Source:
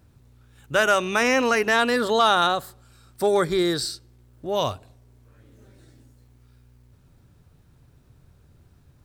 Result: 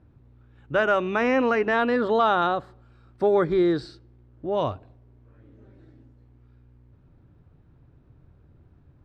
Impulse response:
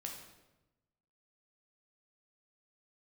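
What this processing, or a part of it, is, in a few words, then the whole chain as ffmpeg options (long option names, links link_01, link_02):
phone in a pocket: -af "lowpass=3300,equalizer=frequency=310:width_type=o:width=0.34:gain=5,highshelf=frequency=2200:gain=-11"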